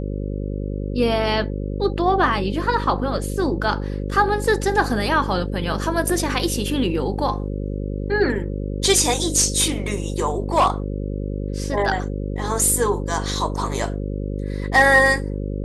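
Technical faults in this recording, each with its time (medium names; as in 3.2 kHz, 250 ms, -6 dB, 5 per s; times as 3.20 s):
buzz 50 Hz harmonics 11 -26 dBFS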